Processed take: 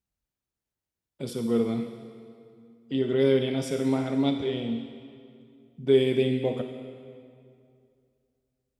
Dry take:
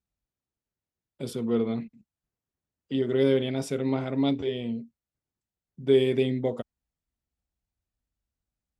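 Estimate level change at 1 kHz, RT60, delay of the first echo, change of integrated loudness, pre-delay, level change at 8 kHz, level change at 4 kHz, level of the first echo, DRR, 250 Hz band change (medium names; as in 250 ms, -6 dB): +1.0 dB, 2.4 s, no echo, +0.5 dB, 27 ms, +1.5 dB, +1.5 dB, no echo, 6.5 dB, +1.0 dB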